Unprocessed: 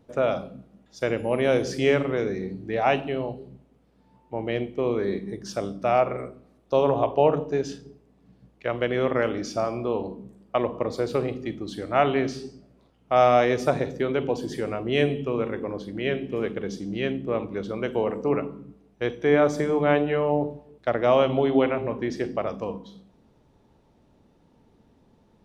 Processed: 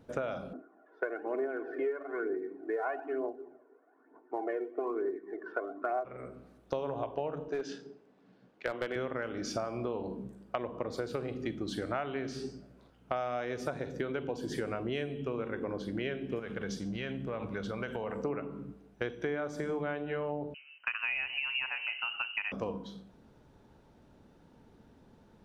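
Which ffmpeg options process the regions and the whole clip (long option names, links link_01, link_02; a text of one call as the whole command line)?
ffmpeg -i in.wav -filter_complex "[0:a]asettb=1/sr,asplit=3[link_01][link_02][link_03];[link_01]atrim=end=0.534[link_04];[link_02]atrim=start=0.53:end=6.05,asetpts=PTS-STARTPTS,afade=type=in:duration=0.004:curve=qsin,afade=type=out:start_time=5.516:duration=0.004:curve=qsin,asuperpass=centerf=710:order=8:qfactor=0.51,aecho=1:1:2.8:0.73,atrim=end_sample=243432,aphaser=in_gain=1:out_gain=1:delay=2.3:decay=0.57:speed=1.1:type=triangular[link_05];[link_03]atrim=start=6.046[link_06];[link_04][link_05]acrossfade=duration=0.004:curve1=hsin:curve2=qsin[link_07];[link_07][link_06]acrossfade=duration=0.004:curve1=qsin:curve2=hsin,asettb=1/sr,asplit=3[link_08][link_09][link_10];[link_08]atrim=end=7.484[link_11];[link_09]atrim=start=7.48:end=8.96,asetpts=PTS-STARTPTS,afade=type=in:duration=0.004:curve=qsin,afade=type=out:start_time=1.476:duration=0.004:curve=qsin,highpass=280,lowpass=5300,aeval=exprs='clip(val(0),-1,0.0841)':channel_layout=same[link_12];[link_10]atrim=start=8.956[link_13];[link_11][link_12]acrossfade=duration=0.004:curve1=hsin:curve2=qsin[link_14];[link_14][link_13]acrossfade=duration=0.004:curve1=qsin:curve2=hsin,asettb=1/sr,asplit=3[link_15][link_16][link_17];[link_15]atrim=end=16.394[link_18];[link_16]atrim=start=16.39:end=18.24,asetpts=PTS-STARTPTS,afade=type=in:duration=0.004:curve=qsin,afade=type=out:start_time=1.846:duration=0.004:curve=qsin,equalizer=frequency=330:width=1.7:gain=-8.5,acompressor=threshold=-32dB:ratio=4:attack=3.2:release=140:knee=1:detection=peak[link_19];[link_17]atrim=start=18.236[link_20];[link_18][link_19]acrossfade=duration=0.004:curve1=hsin:curve2=qsin[link_21];[link_21][link_20]acrossfade=duration=0.004:curve1=qsin:curve2=hsin,asettb=1/sr,asplit=3[link_22][link_23][link_24];[link_22]atrim=end=20.544[link_25];[link_23]atrim=start=20.54:end=22.52,asetpts=PTS-STARTPTS,afade=type=in:duration=0.004:curve=qsin,afade=type=out:start_time=1.976:duration=0.004:curve=qsin,lowshelf=frequency=390:gain=-9.5,lowpass=frequency=2600:width_type=q:width=0.5098,lowpass=frequency=2600:width_type=q:width=0.6013,lowpass=frequency=2600:width_type=q:width=0.9,lowpass=frequency=2600:width_type=q:width=2.563,afreqshift=-3100[link_26];[link_24]atrim=start=22.516[link_27];[link_25][link_26]acrossfade=duration=0.004:curve1=hsin:curve2=qsin[link_28];[link_28][link_27]acrossfade=duration=0.004:curve1=qsin:curve2=hsin,equalizer=frequency=1500:width=5.6:gain=8,acompressor=threshold=-31dB:ratio=12" out.wav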